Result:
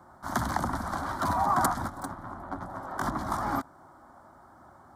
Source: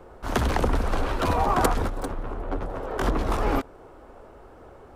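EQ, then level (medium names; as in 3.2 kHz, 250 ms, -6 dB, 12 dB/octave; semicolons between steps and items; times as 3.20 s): high-pass 130 Hz 12 dB/octave; static phaser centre 1.1 kHz, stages 4; 0.0 dB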